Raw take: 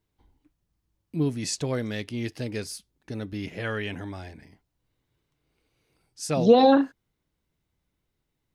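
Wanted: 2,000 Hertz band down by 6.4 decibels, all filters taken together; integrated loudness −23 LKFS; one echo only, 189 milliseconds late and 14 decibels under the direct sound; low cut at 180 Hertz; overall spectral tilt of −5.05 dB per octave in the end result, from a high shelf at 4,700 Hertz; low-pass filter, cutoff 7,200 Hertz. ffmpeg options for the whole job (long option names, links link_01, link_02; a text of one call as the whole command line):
ffmpeg -i in.wav -af "highpass=180,lowpass=7200,equalizer=frequency=2000:width_type=o:gain=-9,highshelf=frequency=4700:gain=3,aecho=1:1:189:0.2,volume=3dB" out.wav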